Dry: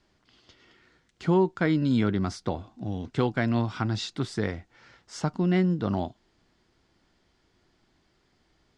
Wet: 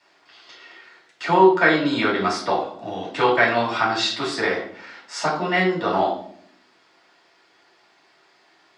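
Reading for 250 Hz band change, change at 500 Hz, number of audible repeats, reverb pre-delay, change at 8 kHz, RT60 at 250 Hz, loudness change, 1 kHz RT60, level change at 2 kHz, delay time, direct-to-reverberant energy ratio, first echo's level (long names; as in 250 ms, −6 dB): +1.0 dB, +9.0 dB, no echo audible, 3 ms, +8.5 dB, 1.1 s, +7.0 dB, 0.50 s, +15.0 dB, no echo audible, −6.0 dB, no echo audible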